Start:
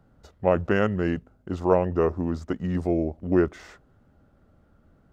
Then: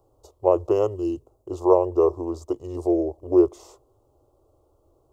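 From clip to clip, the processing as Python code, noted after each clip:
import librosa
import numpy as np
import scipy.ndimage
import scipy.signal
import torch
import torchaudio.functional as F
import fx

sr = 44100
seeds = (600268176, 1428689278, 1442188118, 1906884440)

y = fx.curve_eq(x, sr, hz=(130.0, 180.0, 350.0, 710.0, 1100.0, 1600.0, 2800.0, 7200.0), db=(0, -28, 11, 6, 8, -26, -5, 8))
y = fx.spec_box(y, sr, start_s=0.96, length_s=0.24, low_hz=360.0, high_hz=2500.0, gain_db=-12)
y = fx.high_shelf(y, sr, hz=5200.0, db=5.0)
y = y * 10.0 ** (-5.0 / 20.0)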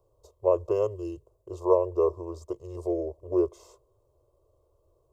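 y = x + 0.68 * np.pad(x, (int(1.9 * sr / 1000.0), 0))[:len(x)]
y = y * 10.0 ** (-7.5 / 20.0)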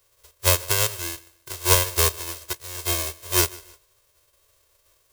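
y = fx.envelope_flatten(x, sr, power=0.1)
y = fx.echo_feedback(y, sr, ms=151, feedback_pct=27, wet_db=-22)
y = y * 10.0 ** (3.5 / 20.0)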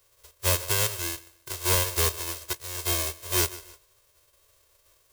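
y = 10.0 ** (-18.0 / 20.0) * np.tanh(x / 10.0 ** (-18.0 / 20.0))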